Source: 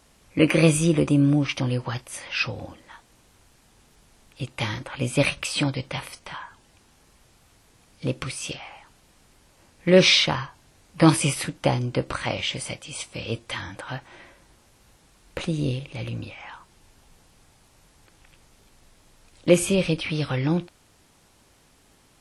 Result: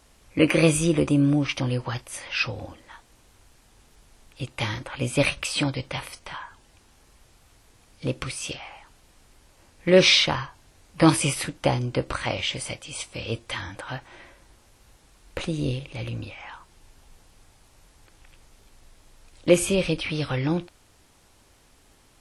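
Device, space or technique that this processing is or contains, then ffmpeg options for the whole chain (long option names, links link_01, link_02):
low shelf boost with a cut just above: -af "lowshelf=frequency=61:gain=6.5,equalizer=frequency=170:width_type=o:width=0.92:gain=-4"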